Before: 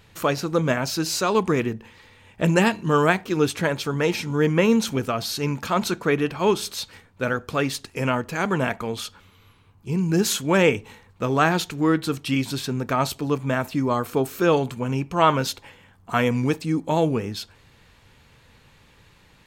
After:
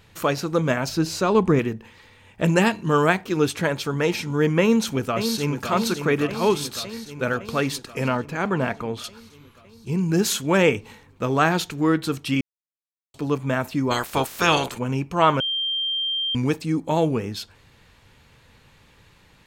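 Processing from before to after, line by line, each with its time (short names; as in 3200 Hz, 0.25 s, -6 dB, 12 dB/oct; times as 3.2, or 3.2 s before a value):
0.89–1.59 tilt -2 dB/oct
4.6–5.69 echo throw 0.56 s, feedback 70%, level -8 dB
8.08–9.04 high shelf 3800 Hz -9.5 dB
12.41–13.14 mute
13.9–14.77 spectral limiter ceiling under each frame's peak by 23 dB
15.4–16.35 bleep 3170 Hz -22 dBFS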